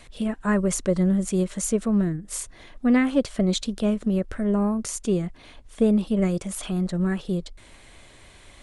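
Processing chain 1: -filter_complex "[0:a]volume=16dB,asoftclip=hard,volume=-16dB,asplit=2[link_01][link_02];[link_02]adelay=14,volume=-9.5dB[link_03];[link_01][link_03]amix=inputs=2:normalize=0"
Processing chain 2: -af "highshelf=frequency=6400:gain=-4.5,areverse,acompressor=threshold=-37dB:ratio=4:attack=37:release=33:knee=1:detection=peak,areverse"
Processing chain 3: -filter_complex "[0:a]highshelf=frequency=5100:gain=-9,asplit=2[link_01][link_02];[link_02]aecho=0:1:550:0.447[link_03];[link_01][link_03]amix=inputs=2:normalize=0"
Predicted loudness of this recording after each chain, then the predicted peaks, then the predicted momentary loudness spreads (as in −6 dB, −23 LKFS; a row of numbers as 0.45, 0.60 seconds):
−24.5, −34.0, −24.5 LKFS; −13.5, −16.0, −9.0 dBFS; 9, 17, 11 LU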